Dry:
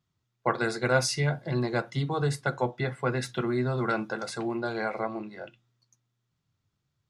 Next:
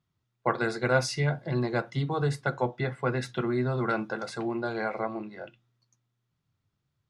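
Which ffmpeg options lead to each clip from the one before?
-af "highshelf=f=6.1k:g=-9"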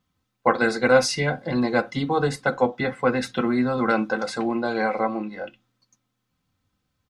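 -af "aecho=1:1:3.9:0.67,volume=6dB"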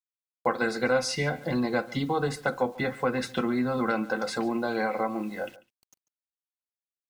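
-af "acrusher=bits=8:mix=0:aa=0.000001,acompressor=threshold=-27dB:ratio=2,aecho=1:1:143:0.1"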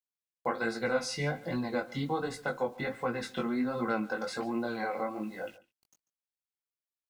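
-af "flanger=delay=17:depth=4.8:speed=1.3,volume=-2.5dB"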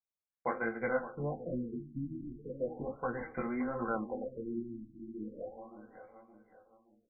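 -filter_complex "[0:a]asubboost=boost=7:cutoff=61,asplit=2[a][b];[b]adelay=570,lowpass=f=1.9k:p=1,volume=-12dB,asplit=2[c][d];[d]adelay=570,lowpass=f=1.9k:p=1,volume=0.42,asplit=2[e][f];[f]adelay=570,lowpass=f=1.9k:p=1,volume=0.42,asplit=2[g][h];[h]adelay=570,lowpass=f=1.9k:p=1,volume=0.42[i];[a][c][e][g][i]amix=inputs=5:normalize=0,afftfilt=real='re*lt(b*sr/1024,340*pow(2500/340,0.5+0.5*sin(2*PI*0.36*pts/sr)))':imag='im*lt(b*sr/1024,340*pow(2500/340,0.5+0.5*sin(2*PI*0.36*pts/sr)))':win_size=1024:overlap=0.75,volume=-2.5dB"

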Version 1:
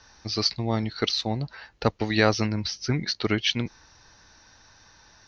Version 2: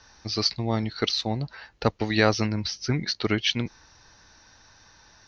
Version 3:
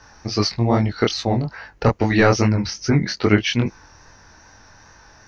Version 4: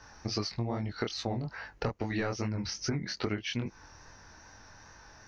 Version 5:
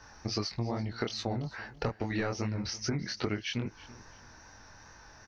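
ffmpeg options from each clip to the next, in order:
-af anull
-af "apsyclip=12dB,flanger=delay=19.5:depth=6:speed=2.4,equalizer=f=3.8k:t=o:w=0.94:g=-11.5"
-af "acompressor=threshold=-24dB:ratio=8,volume=-5.5dB"
-af "aecho=1:1:334|668:0.112|0.0303"

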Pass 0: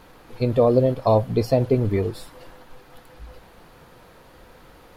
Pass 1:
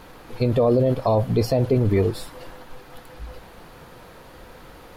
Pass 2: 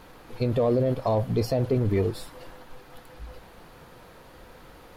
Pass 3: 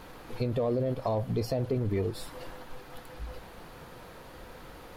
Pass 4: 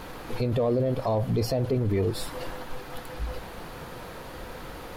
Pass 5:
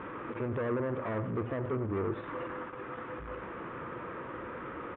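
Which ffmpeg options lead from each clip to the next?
-af "alimiter=limit=-15.5dB:level=0:latency=1:release=24,volume=4.5dB"
-af "asoftclip=type=hard:threshold=-12dB,volume=-4.5dB"
-af "acompressor=threshold=-33dB:ratio=2,volume=1.5dB"
-af "alimiter=level_in=2dB:limit=-24dB:level=0:latency=1:release=14,volume=-2dB,volume=7.5dB"
-af "aresample=8000,asoftclip=type=tanh:threshold=-30dB,aresample=44100,highpass=110,equalizer=f=160:t=q:w=4:g=-4,equalizer=f=340:t=q:w=4:g=5,equalizer=f=750:t=q:w=4:g=-9,equalizer=f=1.2k:t=q:w=4:g=7,lowpass=f=2.3k:w=0.5412,lowpass=f=2.3k:w=1.3066,aecho=1:1:91:0.211"

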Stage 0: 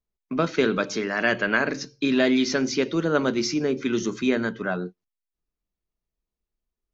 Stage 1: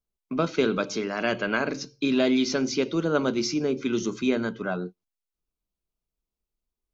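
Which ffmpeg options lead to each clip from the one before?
-af "equalizer=f=1.8k:w=6.1:g=-12,volume=-1.5dB"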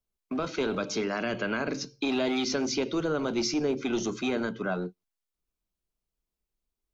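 -filter_complex "[0:a]acrossover=split=250[a][b];[a]aeval=exprs='0.02*(abs(mod(val(0)/0.02+3,4)-2)-1)':c=same[c];[b]alimiter=limit=-20dB:level=0:latency=1:release=86[d];[c][d]amix=inputs=2:normalize=0"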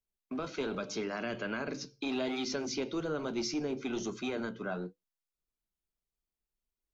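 -af "flanger=delay=4.9:depth=3.7:regen=-74:speed=1.2:shape=sinusoidal,volume=-2dB"

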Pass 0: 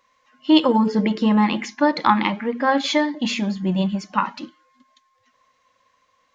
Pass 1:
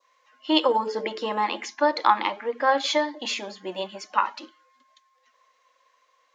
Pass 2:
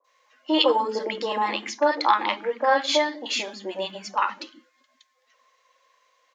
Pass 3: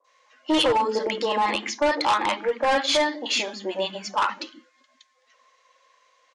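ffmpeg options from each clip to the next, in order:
-af "highpass=f=380:w=0.5412,highpass=f=380:w=1.3066,adynamicequalizer=threshold=0.0112:dfrequency=2100:dqfactor=1.3:tfrequency=2100:tqfactor=1.3:attack=5:release=100:ratio=0.375:range=3:mode=cutabove:tftype=bell,volume=-1dB"
-filter_complex "[0:a]acrossover=split=250|1100[a][b][c];[c]adelay=40[d];[a]adelay=140[e];[e][b][d]amix=inputs=3:normalize=0,volume=2.5dB"
-af "volume=20dB,asoftclip=hard,volume=-20dB,aresample=22050,aresample=44100,volume=3dB"

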